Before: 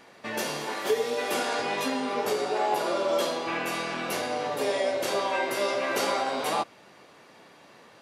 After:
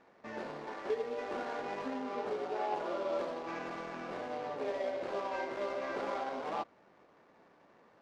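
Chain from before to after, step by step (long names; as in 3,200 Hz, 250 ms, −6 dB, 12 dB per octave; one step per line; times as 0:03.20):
running median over 15 samples
low-pass filter 4,500 Hz 12 dB per octave
parametric band 130 Hz −4 dB 0.53 octaves
level −8.5 dB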